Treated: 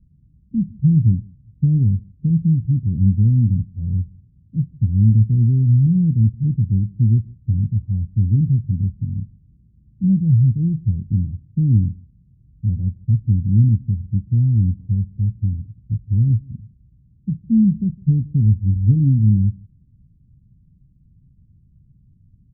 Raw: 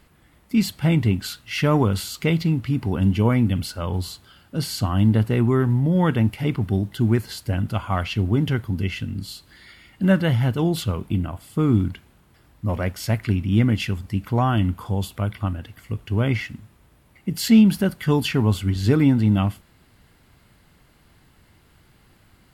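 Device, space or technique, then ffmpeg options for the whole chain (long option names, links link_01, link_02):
the neighbour's flat through the wall: -filter_complex "[0:a]lowpass=frequency=190:width=0.5412,lowpass=frequency=190:width=1.3066,equalizer=frequency=130:width_type=o:width=0.77:gain=3.5,asplit=2[link_01][link_02];[link_02]adelay=157.4,volume=-25dB,highshelf=frequency=4000:gain=-3.54[link_03];[link_01][link_03]amix=inputs=2:normalize=0,volume=4dB"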